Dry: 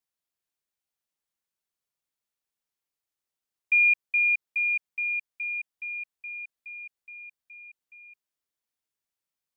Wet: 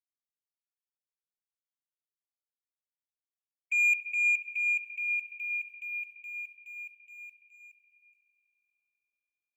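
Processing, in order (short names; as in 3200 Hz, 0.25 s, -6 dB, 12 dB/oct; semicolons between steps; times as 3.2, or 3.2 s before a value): harmonic-percussive split harmonic -7 dB; expander -50 dBFS; transient shaper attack -4 dB, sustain +8 dB; sample leveller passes 1; brick-wall FIR high-pass 2200 Hz; spring tank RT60 3.6 s, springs 54/58 ms, chirp 65 ms, DRR 5.5 dB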